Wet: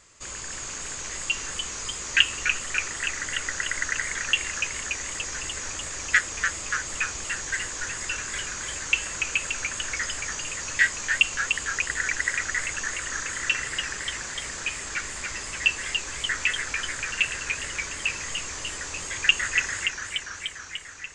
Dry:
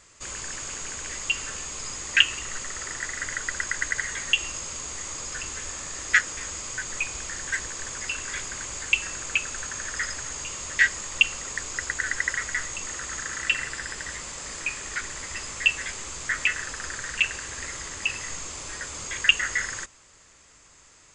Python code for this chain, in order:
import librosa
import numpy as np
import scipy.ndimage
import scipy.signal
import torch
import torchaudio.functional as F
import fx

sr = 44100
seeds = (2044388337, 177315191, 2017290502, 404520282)

y = fx.echo_warbled(x, sr, ms=292, feedback_pct=73, rate_hz=2.8, cents=156, wet_db=-6)
y = y * librosa.db_to_amplitude(-1.0)